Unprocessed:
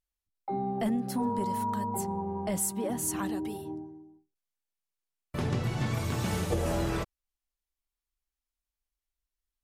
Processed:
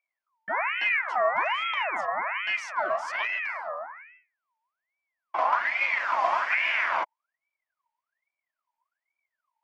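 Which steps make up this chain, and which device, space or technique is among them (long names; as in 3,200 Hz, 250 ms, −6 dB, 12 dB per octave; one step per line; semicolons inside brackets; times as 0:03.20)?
voice changer toy (ring modulator whose carrier an LFO sweeps 1,600 Hz, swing 45%, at 1.2 Hz; loudspeaker in its box 430–4,700 Hz, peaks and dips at 440 Hz −9 dB, 650 Hz +10 dB, 990 Hz +9 dB, 2,200 Hz +5 dB, 3,900 Hz −9 dB)
level +3 dB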